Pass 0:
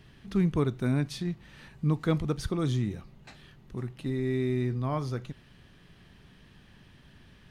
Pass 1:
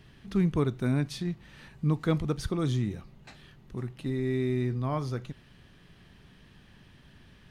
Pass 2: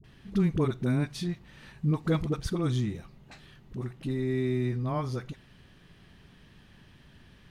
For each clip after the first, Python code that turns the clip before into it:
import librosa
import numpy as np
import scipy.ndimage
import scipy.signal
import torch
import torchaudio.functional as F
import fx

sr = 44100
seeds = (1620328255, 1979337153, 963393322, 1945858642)

y1 = x
y2 = fx.dispersion(y1, sr, late='highs', ms=42.0, hz=530.0)